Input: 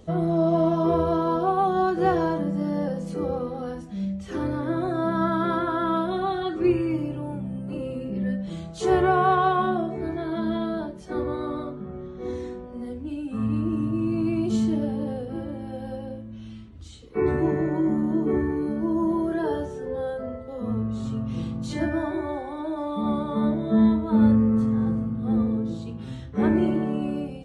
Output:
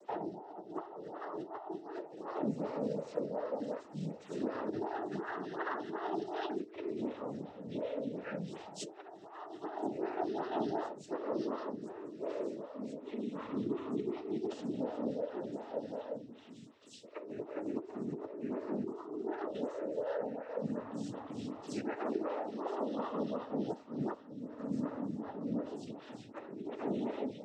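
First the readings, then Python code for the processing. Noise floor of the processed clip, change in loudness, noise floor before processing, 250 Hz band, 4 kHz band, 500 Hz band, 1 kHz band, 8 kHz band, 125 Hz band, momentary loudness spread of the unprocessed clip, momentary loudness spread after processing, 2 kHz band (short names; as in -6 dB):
-54 dBFS, -14.5 dB, -39 dBFS, -15.5 dB, -11.0 dB, -11.0 dB, -15.0 dB, n/a, -19.0 dB, 13 LU, 9 LU, -14.0 dB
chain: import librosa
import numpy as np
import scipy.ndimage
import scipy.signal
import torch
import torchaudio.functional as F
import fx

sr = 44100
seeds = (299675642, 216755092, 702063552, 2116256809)

p1 = fx.octave_divider(x, sr, octaves=2, level_db=0.0)
p2 = scipy.signal.sosfilt(scipy.signal.butter(2, 310.0, 'highpass', fs=sr, output='sos'), p1)
p3 = fx.dynamic_eq(p2, sr, hz=1300.0, q=1.4, threshold_db=-40.0, ratio=4.0, max_db=-5)
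p4 = fx.over_compress(p3, sr, threshold_db=-30.0, ratio=-0.5)
p5 = fx.noise_vocoder(p4, sr, seeds[0], bands=12)
p6 = p5 + fx.echo_wet_highpass(p5, sr, ms=1024, feedback_pct=82, hz=4300.0, wet_db=-14.5, dry=0)
p7 = fx.stagger_phaser(p6, sr, hz=2.7)
y = p7 * librosa.db_to_amplitude(-4.5)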